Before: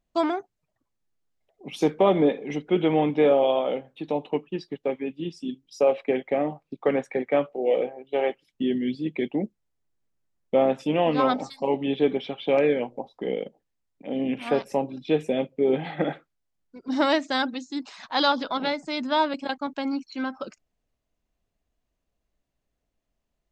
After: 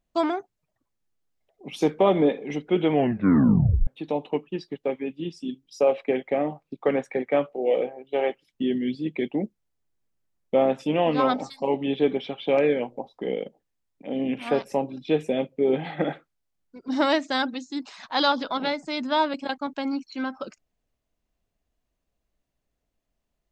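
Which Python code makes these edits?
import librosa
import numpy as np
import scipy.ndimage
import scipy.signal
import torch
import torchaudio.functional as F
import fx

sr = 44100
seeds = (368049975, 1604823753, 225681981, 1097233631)

y = fx.edit(x, sr, fx.tape_stop(start_s=2.91, length_s=0.96), tone=tone)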